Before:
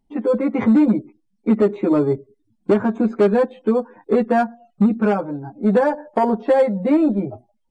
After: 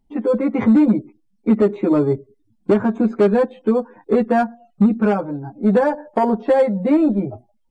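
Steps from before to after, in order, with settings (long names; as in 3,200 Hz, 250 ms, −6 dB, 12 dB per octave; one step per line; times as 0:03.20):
low-shelf EQ 130 Hz +5 dB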